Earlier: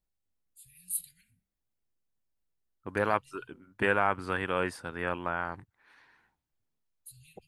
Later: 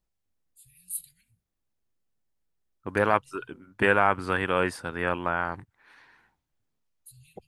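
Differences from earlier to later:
first voice: send -8.5 dB; second voice +5.0 dB

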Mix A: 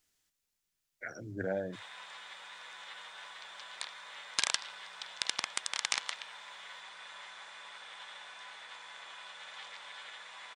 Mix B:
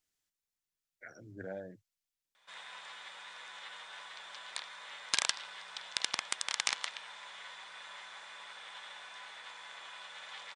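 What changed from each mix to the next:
speech -8.0 dB; background: entry +0.75 s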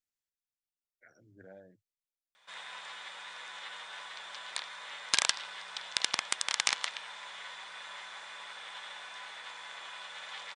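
speech -10.0 dB; background +3.5 dB

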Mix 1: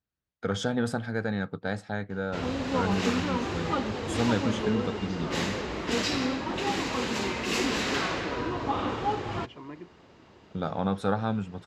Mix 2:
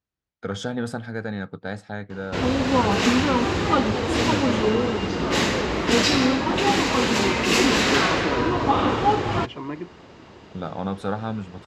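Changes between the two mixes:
second voice +10.5 dB; background +9.0 dB

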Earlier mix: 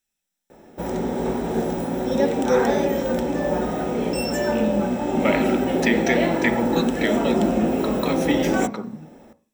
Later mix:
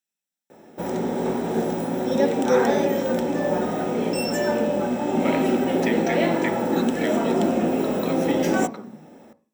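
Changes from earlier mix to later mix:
speech -7.0 dB; master: add high-pass 120 Hz 12 dB/octave

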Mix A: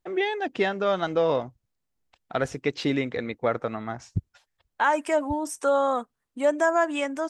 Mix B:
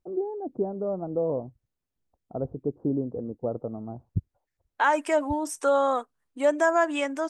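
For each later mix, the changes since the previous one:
first voice: add Gaussian low-pass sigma 13 samples; second voice: add brick-wall FIR high-pass 240 Hz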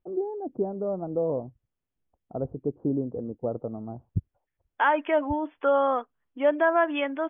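master: add brick-wall FIR low-pass 3.5 kHz

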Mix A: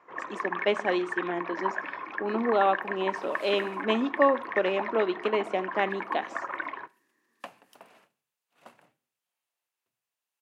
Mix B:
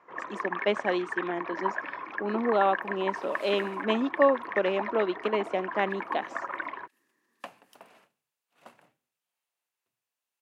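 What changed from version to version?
reverb: off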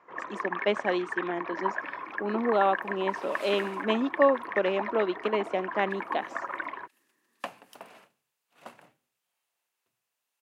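second sound +5.5 dB

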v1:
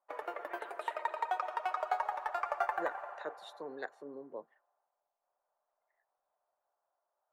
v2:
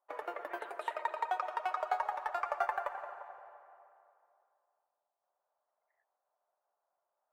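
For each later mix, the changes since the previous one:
second voice: muted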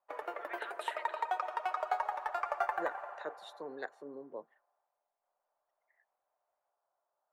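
first voice +8.5 dB; second voice: unmuted

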